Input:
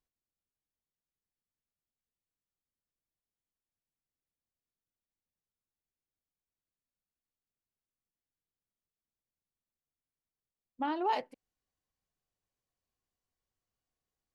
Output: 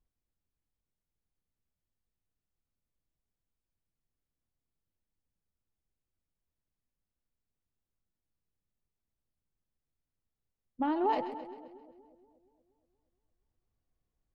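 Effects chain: tilt -3 dB/oct; split-band echo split 650 Hz, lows 0.236 s, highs 0.132 s, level -11.5 dB

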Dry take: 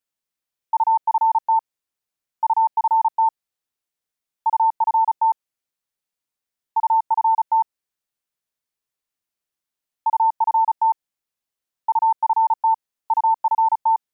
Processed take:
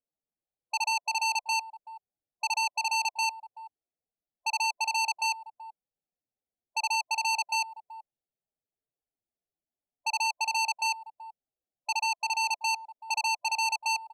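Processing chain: steep low-pass 870 Hz 96 dB/oct; 11.96–12.47 bell 560 Hz -8 dB 0.37 oct; loudest bins only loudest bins 16; speakerphone echo 0.38 s, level -21 dB; core saturation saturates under 3600 Hz; gain +1 dB

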